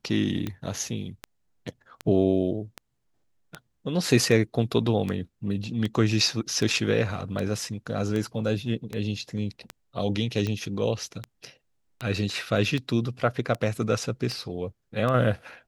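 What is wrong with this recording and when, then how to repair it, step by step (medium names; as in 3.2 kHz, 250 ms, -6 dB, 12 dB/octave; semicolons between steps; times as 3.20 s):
tick 78 rpm -17 dBFS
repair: de-click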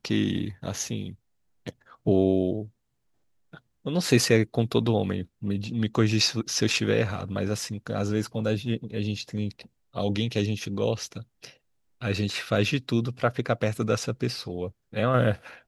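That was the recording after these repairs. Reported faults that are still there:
nothing left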